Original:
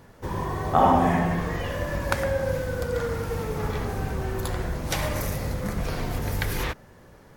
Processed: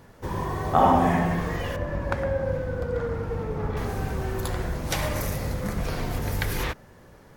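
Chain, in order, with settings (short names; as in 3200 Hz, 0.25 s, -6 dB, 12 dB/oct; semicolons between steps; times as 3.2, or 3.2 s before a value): 1.76–3.77 LPF 1200 Hz 6 dB/oct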